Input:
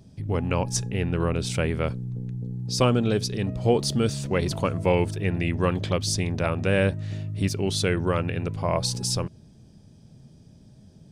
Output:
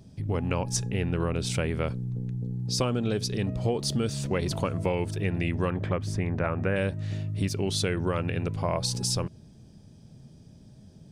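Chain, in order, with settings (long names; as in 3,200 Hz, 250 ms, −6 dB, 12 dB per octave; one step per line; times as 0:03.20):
0:05.70–0:06.76: high shelf with overshoot 2,700 Hz −13.5 dB, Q 1.5
downward compressor, threshold −23 dBFS, peak gain reduction 8.5 dB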